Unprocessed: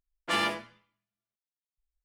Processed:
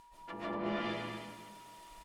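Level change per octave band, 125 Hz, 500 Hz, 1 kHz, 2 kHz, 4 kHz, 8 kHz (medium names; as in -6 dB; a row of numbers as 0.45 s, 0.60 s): +3.0 dB, -0.5 dB, -6.0 dB, -10.0 dB, -12.0 dB, -12.5 dB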